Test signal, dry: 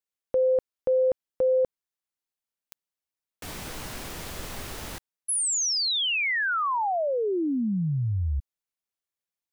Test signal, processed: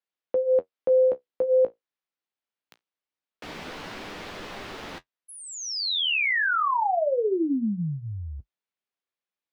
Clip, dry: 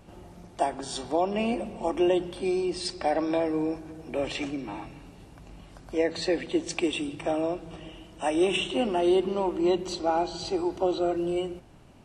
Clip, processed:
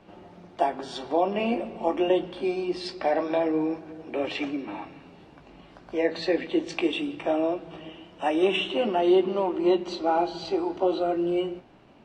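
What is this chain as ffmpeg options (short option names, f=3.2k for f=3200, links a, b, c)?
-filter_complex "[0:a]acrossover=split=170 4700:gain=0.224 1 0.0891[a][b][c];[a][b][c]amix=inputs=3:normalize=0,flanger=delay=9.8:depth=8.8:regen=-40:speed=0.23:shape=sinusoidal,volume=6dB"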